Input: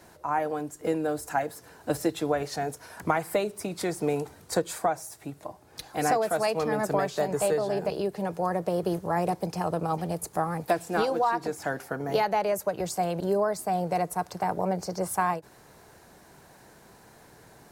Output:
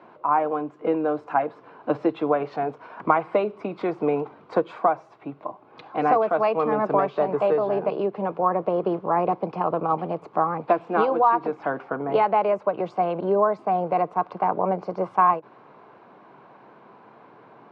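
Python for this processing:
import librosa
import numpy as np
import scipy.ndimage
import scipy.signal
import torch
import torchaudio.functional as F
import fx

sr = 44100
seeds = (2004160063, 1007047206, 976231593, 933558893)

y = fx.cabinet(x, sr, low_hz=150.0, low_slope=24, high_hz=2600.0, hz=(170.0, 1100.0, 1800.0), db=(-6, 8, -10))
y = F.gain(torch.from_numpy(y), 4.5).numpy()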